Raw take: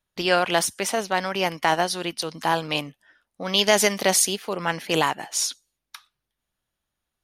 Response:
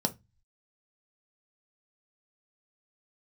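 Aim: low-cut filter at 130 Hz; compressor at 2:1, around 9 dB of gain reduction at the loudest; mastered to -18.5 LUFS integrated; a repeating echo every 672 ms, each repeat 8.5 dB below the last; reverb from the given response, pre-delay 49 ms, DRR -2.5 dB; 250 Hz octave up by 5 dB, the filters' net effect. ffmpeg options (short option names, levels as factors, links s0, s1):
-filter_complex "[0:a]highpass=130,equalizer=f=250:t=o:g=8.5,acompressor=threshold=0.0355:ratio=2,aecho=1:1:672|1344|2016|2688:0.376|0.143|0.0543|0.0206,asplit=2[s0][s1];[1:a]atrim=start_sample=2205,adelay=49[s2];[s1][s2]afir=irnorm=-1:irlink=0,volume=0.631[s3];[s0][s3]amix=inputs=2:normalize=0,volume=1.41"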